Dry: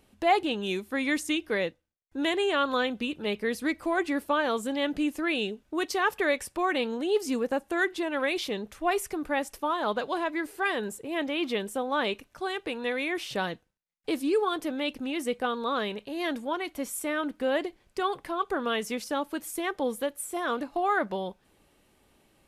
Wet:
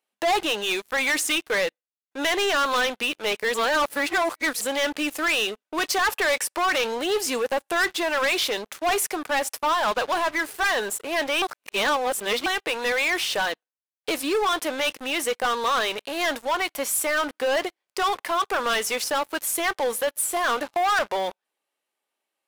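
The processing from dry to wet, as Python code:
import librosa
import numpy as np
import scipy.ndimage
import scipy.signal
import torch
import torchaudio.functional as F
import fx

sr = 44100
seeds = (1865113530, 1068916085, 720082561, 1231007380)

y = fx.edit(x, sr, fx.reverse_span(start_s=3.54, length_s=1.07),
    fx.reverse_span(start_s=11.42, length_s=1.04), tone=tone)
y = scipy.signal.sosfilt(scipy.signal.butter(2, 620.0, 'highpass', fs=sr, output='sos'), y)
y = fx.high_shelf(y, sr, hz=12000.0, db=2.0)
y = fx.leveller(y, sr, passes=5)
y = y * 10.0 ** (-5.5 / 20.0)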